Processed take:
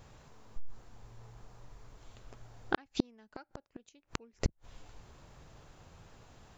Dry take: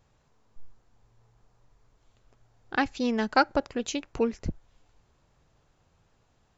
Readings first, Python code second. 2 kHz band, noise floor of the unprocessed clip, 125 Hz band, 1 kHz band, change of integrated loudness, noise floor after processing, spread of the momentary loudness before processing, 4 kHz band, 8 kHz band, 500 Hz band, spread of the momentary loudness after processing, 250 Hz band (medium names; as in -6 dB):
-12.0 dB, -68 dBFS, -0.5 dB, -14.5 dB, -11.0 dB, -76 dBFS, 9 LU, -9.5 dB, no reading, -13.5 dB, 21 LU, -10.5 dB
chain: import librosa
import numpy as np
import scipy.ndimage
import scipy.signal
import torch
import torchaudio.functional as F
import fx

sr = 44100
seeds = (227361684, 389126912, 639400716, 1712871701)

y = fx.gate_flip(x, sr, shuts_db=-23.0, range_db=-42)
y = fx.transformer_sat(y, sr, knee_hz=75.0)
y = y * librosa.db_to_amplitude(10.5)